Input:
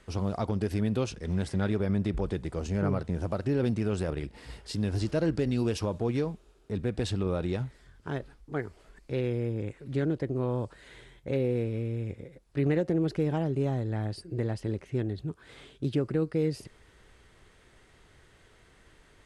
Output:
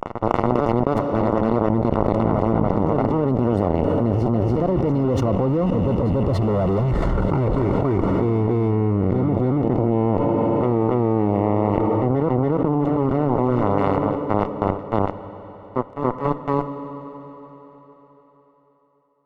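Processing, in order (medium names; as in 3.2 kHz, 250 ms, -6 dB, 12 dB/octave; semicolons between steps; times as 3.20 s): rattle on loud lows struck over -39 dBFS, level -36 dBFS; Doppler pass-by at 6.90 s, 35 m/s, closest 4 m; transient shaper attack -5 dB, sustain +5 dB; fuzz box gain 54 dB, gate -60 dBFS; Savitzky-Golay filter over 65 samples; reverse echo 283 ms -13.5 dB; reverberation RT60 4.4 s, pre-delay 3 ms, DRR 17 dB; level flattener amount 100%; trim -6 dB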